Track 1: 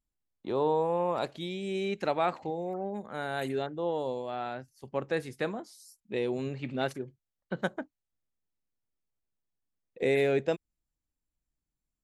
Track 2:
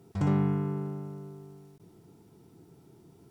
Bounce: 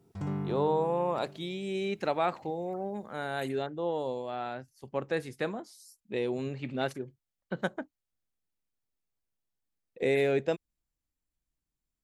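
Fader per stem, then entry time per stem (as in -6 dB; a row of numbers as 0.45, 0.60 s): -0.5, -8.0 dB; 0.00, 0.00 s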